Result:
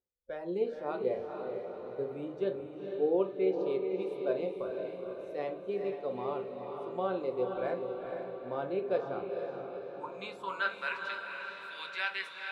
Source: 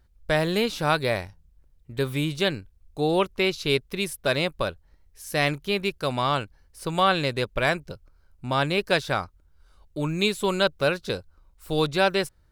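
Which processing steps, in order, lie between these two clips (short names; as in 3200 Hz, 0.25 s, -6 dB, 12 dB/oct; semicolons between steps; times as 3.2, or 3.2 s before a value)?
band-pass sweep 450 Hz -> 2100 Hz, 9.26–11.06; spectral noise reduction 13 dB; on a send: diffused feedback echo 0.474 s, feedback 57%, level -5 dB; on the sum: shoebox room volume 170 m³, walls furnished, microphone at 0.82 m; gain -4 dB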